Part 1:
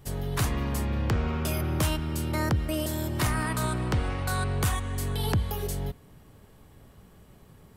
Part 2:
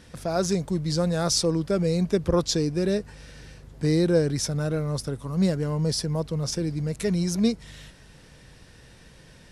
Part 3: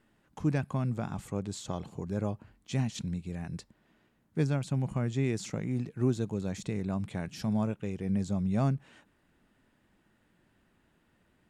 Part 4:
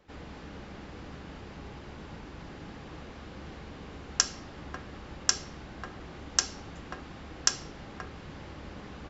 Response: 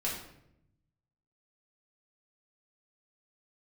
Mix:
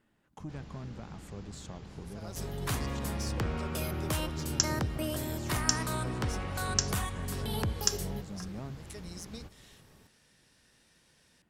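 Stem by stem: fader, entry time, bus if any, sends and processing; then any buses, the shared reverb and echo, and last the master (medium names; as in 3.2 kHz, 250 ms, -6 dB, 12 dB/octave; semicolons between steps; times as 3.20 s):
-4.5 dB, 2.30 s, no bus, no send, tone controls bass -3 dB, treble 0 dB
-13.0 dB, 1.90 s, bus A, no send, tilt EQ +2.5 dB/octave
-1.5 dB, 0.00 s, bus A, no send, none
-9.0 dB, 0.40 s, no bus, no send, tone controls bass +8 dB, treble +8 dB
bus A: 0.0 dB, valve stage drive 21 dB, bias 0.55; compression 2.5:1, threshold -43 dBFS, peak gain reduction 11 dB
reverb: none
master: none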